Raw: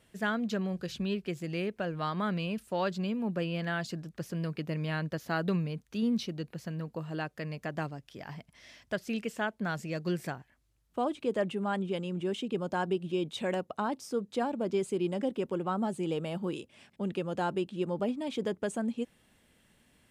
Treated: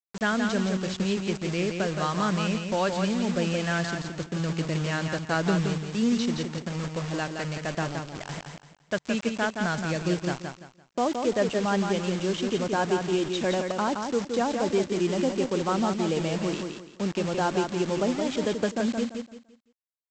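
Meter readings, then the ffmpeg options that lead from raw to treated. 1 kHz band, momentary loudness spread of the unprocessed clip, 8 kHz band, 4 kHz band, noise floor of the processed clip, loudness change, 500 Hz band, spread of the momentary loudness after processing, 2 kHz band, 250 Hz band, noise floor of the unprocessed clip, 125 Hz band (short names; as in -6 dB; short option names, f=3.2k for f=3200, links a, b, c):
+6.5 dB, 7 LU, +12.5 dB, +8.5 dB, -62 dBFS, +6.0 dB, +6.0 dB, 7 LU, +7.0 dB, +6.0 dB, -70 dBFS, +6.0 dB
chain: -af "aresample=16000,acrusher=bits=6:mix=0:aa=0.000001,aresample=44100,aecho=1:1:170|340|510|680:0.531|0.154|0.0446|0.0129,volume=5dB"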